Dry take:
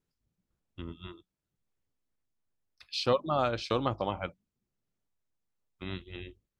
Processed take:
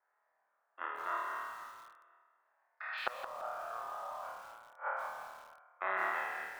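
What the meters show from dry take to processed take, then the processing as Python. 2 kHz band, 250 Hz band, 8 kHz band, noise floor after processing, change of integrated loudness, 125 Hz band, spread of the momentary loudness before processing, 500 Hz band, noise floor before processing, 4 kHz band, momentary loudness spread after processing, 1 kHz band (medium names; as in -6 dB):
+6.5 dB, -22.5 dB, -6.5 dB, -80 dBFS, -8.0 dB, under -30 dB, 17 LU, -12.5 dB, under -85 dBFS, -13.5 dB, 16 LU, -1.0 dB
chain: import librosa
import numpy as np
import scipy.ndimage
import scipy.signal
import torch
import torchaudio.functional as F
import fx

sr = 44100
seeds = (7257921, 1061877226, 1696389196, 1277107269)

p1 = fx.spec_trails(x, sr, decay_s=1.65)
p2 = scipy.signal.sosfilt(scipy.signal.cheby1(3, 1.0, [650.0, 1800.0], 'bandpass', fs=sr, output='sos'), p1)
p3 = fx.level_steps(p2, sr, step_db=9)
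p4 = p3 + fx.room_flutter(p3, sr, wall_m=4.5, rt60_s=0.91, dry=0)
p5 = fx.gate_flip(p4, sr, shuts_db=-36.0, range_db=-32)
p6 = fx.rider(p5, sr, range_db=5, speed_s=0.5)
p7 = p5 + F.gain(torch.from_numpy(p6), 0.5).numpy()
p8 = fx.echo_crushed(p7, sr, ms=168, feedback_pct=35, bits=10, wet_db=-9)
y = F.gain(torch.from_numpy(p8), 10.0).numpy()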